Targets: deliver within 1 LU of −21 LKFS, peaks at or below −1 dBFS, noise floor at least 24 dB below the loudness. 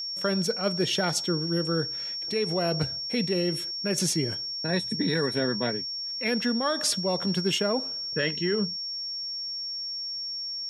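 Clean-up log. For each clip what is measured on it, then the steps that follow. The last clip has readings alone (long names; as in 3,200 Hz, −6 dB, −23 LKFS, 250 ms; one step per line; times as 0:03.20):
interfering tone 5,500 Hz; level of the tone −31 dBFS; integrated loudness −27.0 LKFS; sample peak −11.5 dBFS; target loudness −21.0 LKFS
→ notch filter 5,500 Hz, Q 30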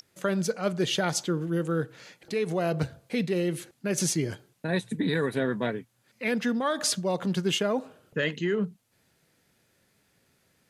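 interfering tone none found; integrated loudness −29.0 LKFS; sample peak −12.5 dBFS; target loudness −21.0 LKFS
→ level +8 dB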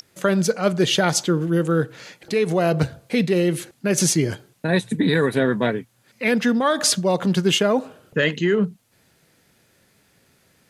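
integrated loudness −21.0 LKFS; sample peak −4.5 dBFS; background noise floor −61 dBFS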